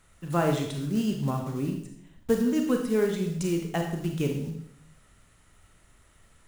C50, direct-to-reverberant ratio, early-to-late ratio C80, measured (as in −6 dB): 5.0 dB, 2.5 dB, 8.5 dB